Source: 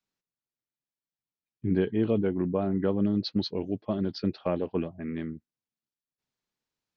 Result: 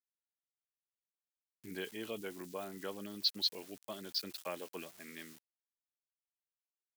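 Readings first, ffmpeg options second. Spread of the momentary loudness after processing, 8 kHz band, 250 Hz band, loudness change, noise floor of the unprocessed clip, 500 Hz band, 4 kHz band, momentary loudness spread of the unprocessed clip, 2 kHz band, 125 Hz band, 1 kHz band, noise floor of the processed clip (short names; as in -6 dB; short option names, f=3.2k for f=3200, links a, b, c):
15 LU, n/a, -20.5 dB, -10.5 dB, under -85 dBFS, -15.0 dB, +4.0 dB, 9 LU, -3.0 dB, -24.5 dB, -9.0 dB, under -85 dBFS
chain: -af "aeval=exprs='val(0)*gte(abs(val(0)),0.00335)':c=same,aderivative,volume=8.5dB"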